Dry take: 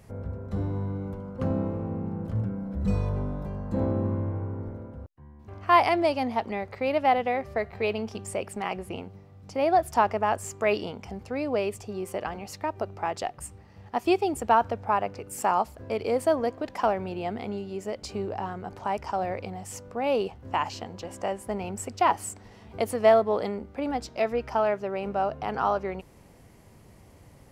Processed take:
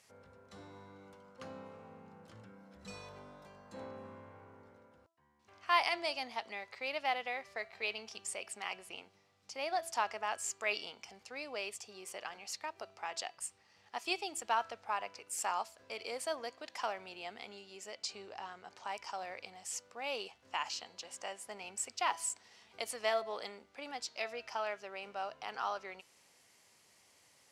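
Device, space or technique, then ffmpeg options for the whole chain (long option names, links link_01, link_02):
piezo pickup straight into a mixer: -filter_complex "[0:a]asettb=1/sr,asplit=3[link_01][link_02][link_03];[link_01]atrim=end=17.924[link_04];[link_02]atrim=start=17.92:end=18.89,asetpts=PTS-STARTPTS,afade=type=in:duration=0.004:curve=qsin,afade=type=out:start_time=0.966:duration=0.004:curve=qsin,lowpass=8900[link_05];[link_03]atrim=start=18.886[link_06];[link_04][link_05]acrossfade=duration=0.004:curve1=hsin:curve2=qsin[link_07];[link_07][link_06]acrossfade=duration=0.004:curve1=qsin:curve2=hsin,lowpass=5900,aderivative,bandreject=frequency=331.1:width_type=h:width=4,bandreject=frequency=662.2:width_type=h:width=4,bandreject=frequency=993.3:width_type=h:width=4,bandreject=frequency=1324.4:width_type=h:width=4,bandreject=frequency=1655.5:width_type=h:width=4,bandreject=frequency=1986.6:width_type=h:width=4,bandreject=frequency=2317.7:width_type=h:width=4,bandreject=frequency=2648.8:width_type=h:width=4,bandreject=frequency=2979.9:width_type=h:width=4,bandreject=frequency=3311:width_type=h:width=4,bandreject=frequency=3642.1:width_type=h:width=4,bandreject=frequency=3973.2:width_type=h:width=4,bandreject=frequency=4304.3:width_type=h:width=4,bandreject=frequency=4635.4:width_type=h:width=4,volume=6dB"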